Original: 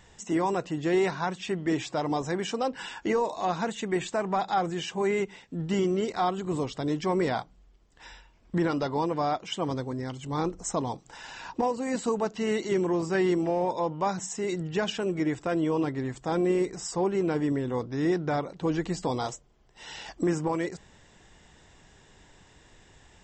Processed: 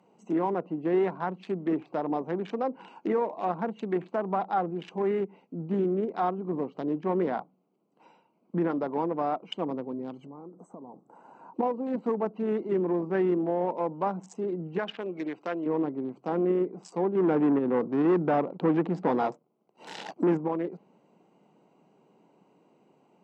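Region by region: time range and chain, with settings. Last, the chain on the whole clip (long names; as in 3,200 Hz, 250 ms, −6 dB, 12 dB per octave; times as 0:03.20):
0:10.26–0:11.54: flat-topped bell 3,600 Hz −15.5 dB + downward compressor 16 to 1, threshold −38 dBFS
0:14.78–0:15.66: low-pass filter 4,600 Hz + spectral tilt +3.5 dB per octave
0:17.15–0:20.37: fake sidechain pumping 138 BPM, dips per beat 1, −5 dB, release 158 ms + leveller curve on the samples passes 2
whole clip: adaptive Wiener filter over 25 samples; treble cut that deepens with the level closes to 1,700 Hz, closed at −26.5 dBFS; Butterworth high-pass 170 Hz 36 dB per octave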